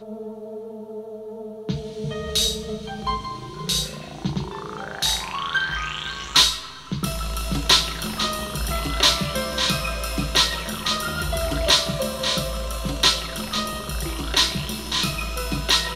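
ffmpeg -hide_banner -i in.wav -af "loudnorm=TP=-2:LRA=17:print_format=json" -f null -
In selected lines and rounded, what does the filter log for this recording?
"input_i" : "-22.4",
"input_tp" : "-3.9",
"input_lra" : "5.4",
"input_thresh" : "-32.8",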